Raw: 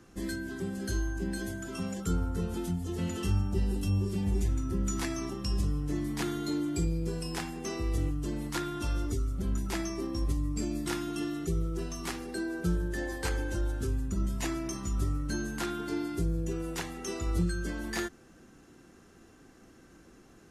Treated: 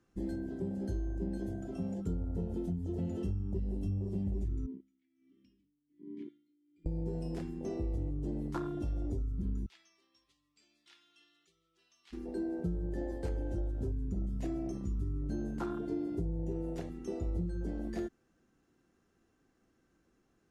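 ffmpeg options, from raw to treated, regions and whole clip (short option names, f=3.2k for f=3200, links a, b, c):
-filter_complex "[0:a]asettb=1/sr,asplit=3[a][b][c];[a]atrim=end=4.664[d];[b]atrim=start=4.66:end=6.86,asetpts=PTS-STARTPTS,afade=t=in:d=0.004:c=qsin,afade=t=out:st=2.196:d=0.004:c=qsin,asplit=3[e][f][g];[e]bandpass=f=270:t=q:w=8,volume=0dB[h];[f]bandpass=f=2.29k:t=q:w=8,volume=-6dB[i];[g]bandpass=f=3.01k:t=q:w=8,volume=-9dB[j];[h][i][j]amix=inputs=3:normalize=0,aeval=exprs='val(0)*pow(10,-21*(0.5-0.5*cos(2*PI*1.3*n/s))/20)':c=same[k];[c]atrim=start=6.856[l];[d][k]acrossfade=d=0.004:c1=hsin:c2=qsin[m];[m][l]acrossfade=d=0.004:c1=qsin:c2=hsin,asettb=1/sr,asplit=3[n][o][p];[n]atrim=end=9.664[q];[o]atrim=start=9.66:end=12.13,asetpts=PTS-STARTPTS,afade=t=in:d=0.004:c=qsin,afade=t=out:st=2.466:d=0.004:c=qsin,bandpass=f=3.4k:t=q:w=1.9,acrusher=bits=8:mode=log:mix=0:aa=0.000001[r];[p]atrim=start=12.126[s];[q][r]acrossfade=d=0.004:c1=hsin:c2=qsin[t];[t][s]acrossfade=d=0.004:c1=qsin:c2=hsin,afwtdn=0.0251,highshelf=f=8.7k:g=-7.5,acompressor=threshold=-31dB:ratio=6"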